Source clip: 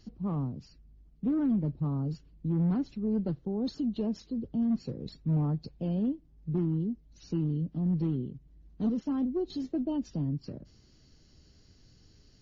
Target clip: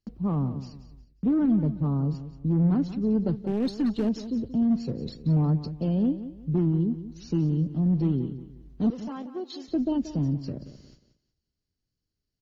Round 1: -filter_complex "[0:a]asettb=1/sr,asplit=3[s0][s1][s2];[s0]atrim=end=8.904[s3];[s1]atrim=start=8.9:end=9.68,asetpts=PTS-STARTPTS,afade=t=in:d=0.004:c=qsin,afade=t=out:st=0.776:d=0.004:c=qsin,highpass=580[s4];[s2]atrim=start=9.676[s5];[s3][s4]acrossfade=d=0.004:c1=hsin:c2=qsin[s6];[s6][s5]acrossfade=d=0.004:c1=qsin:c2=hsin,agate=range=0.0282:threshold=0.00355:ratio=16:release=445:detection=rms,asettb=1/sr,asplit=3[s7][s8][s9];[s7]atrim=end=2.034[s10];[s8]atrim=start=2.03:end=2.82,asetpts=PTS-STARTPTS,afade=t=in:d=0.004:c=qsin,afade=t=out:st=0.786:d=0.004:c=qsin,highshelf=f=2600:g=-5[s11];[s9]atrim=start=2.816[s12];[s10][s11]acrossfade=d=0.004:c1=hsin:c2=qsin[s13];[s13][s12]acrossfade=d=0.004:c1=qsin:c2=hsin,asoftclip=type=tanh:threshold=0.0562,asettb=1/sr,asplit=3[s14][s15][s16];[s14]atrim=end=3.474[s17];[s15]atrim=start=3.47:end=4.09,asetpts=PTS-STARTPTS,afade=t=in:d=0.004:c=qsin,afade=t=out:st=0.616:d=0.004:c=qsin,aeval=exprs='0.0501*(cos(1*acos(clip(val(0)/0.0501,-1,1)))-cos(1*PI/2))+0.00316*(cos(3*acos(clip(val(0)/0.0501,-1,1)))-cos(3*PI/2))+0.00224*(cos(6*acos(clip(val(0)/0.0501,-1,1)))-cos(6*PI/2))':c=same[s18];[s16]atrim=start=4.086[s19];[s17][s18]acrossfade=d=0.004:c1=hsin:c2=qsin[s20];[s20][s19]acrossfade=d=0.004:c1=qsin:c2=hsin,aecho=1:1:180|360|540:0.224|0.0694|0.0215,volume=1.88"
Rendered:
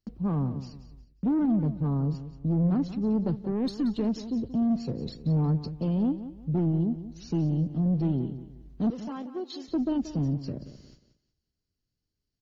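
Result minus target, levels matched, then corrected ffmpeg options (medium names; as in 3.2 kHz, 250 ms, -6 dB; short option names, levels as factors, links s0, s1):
saturation: distortion +16 dB
-filter_complex "[0:a]asettb=1/sr,asplit=3[s0][s1][s2];[s0]atrim=end=8.904[s3];[s1]atrim=start=8.9:end=9.68,asetpts=PTS-STARTPTS,afade=t=in:d=0.004:c=qsin,afade=t=out:st=0.776:d=0.004:c=qsin,highpass=580[s4];[s2]atrim=start=9.676[s5];[s3][s4]acrossfade=d=0.004:c1=hsin:c2=qsin[s6];[s6][s5]acrossfade=d=0.004:c1=qsin:c2=hsin,agate=range=0.0282:threshold=0.00355:ratio=16:release=445:detection=rms,asettb=1/sr,asplit=3[s7][s8][s9];[s7]atrim=end=2.034[s10];[s8]atrim=start=2.03:end=2.82,asetpts=PTS-STARTPTS,afade=t=in:d=0.004:c=qsin,afade=t=out:st=0.786:d=0.004:c=qsin,highshelf=f=2600:g=-5[s11];[s9]atrim=start=2.816[s12];[s10][s11]acrossfade=d=0.004:c1=hsin:c2=qsin[s13];[s13][s12]acrossfade=d=0.004:c1=qsin:c2=hsin,asoftclip=type=tanh:threshold=0.168,asettb=1/sr,asplit=3[s14][s15][s16];[s14]atrim=end=3.474[s17];[s15]atrim=start=3.47:end=4.09,asetpts=PTS-STARTPTS,afade=t=in:d=0.004:c=qsin,afade=t=out:st=0.616:d=0.004:c=qsin,aeval=exprs='0.0501*(cos(1*acos(clip(val(0)/0.0501,-1,1)))-cos(1*PI/2))+0.00316*(cos(3*acos(clip(val(0)/0.0501,-1,1)))-cos(3*PI/2))+0.00224*(cos(6*acos(clip(val(0)/0.0501,-1,1)))-cos(6*PI/2))':c=same[s18];[s16]atrim=start=4.086[s19];[s17][s18]acrossfade=d=0.004:c1=hsin:c2=qsin[s20];[s20][s19]acrossfade=d=0.004:c1=qsin:c2=hsin,aecho=1:1:180|360|540:0.224|0.0694|0.0215,volume=1.88"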